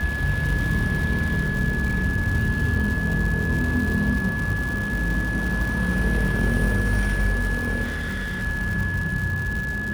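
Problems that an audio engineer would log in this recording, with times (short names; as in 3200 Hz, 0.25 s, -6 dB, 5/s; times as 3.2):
crackle 240/s -28 dBFS
tone 1700 Hz -27 dBFS
7.83–8.43 clipped -24.5 dBFS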